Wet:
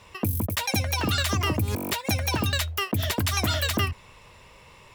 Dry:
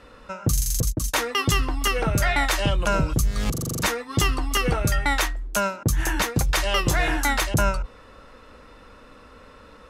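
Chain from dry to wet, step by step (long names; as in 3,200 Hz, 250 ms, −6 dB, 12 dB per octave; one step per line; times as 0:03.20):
wrong playback speed 7.5 ips tape played at 15 ips
level −3.5 dB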